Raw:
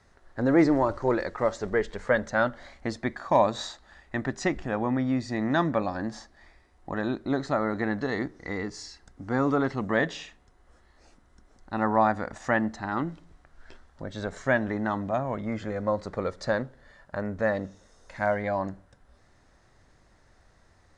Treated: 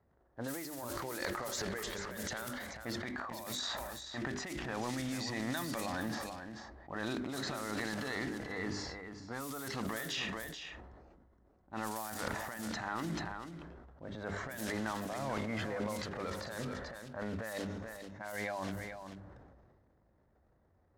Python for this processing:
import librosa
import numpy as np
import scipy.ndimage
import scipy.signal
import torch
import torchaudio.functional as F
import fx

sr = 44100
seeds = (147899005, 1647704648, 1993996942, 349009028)

y = fx.block_float(x, sr, bits=5)
y = scipy.signal.sosfilt(scipy.signal.butter(4, 44.0, 'highpass', fs=sr, output='sos'), y)
y = fx.hum_notches(y, sr, base_hz=50, count=8)
y = fx.env_lowpass(y, sr, base_hz=520.0, full_db=-20.0)
y = librosa.effects.preemphasis(y, coef=0.9, zi=[0.0])
y = fx.over_compress(y, sr, threshold_db=-48.0, ratio=-1.0)
y = fx.transient(y, sr, attack_db=-4, sustain_db=10)
y = y + 10.0 ** (-9.0 / 20.0) * np.pad(y, (int(436 * sr / 1000.0), 0))[:len(y)]
y = fx.sustainer(y, sr, db_per_s=30.0)
y = y * 10.0 ** (7.5 / 20.0)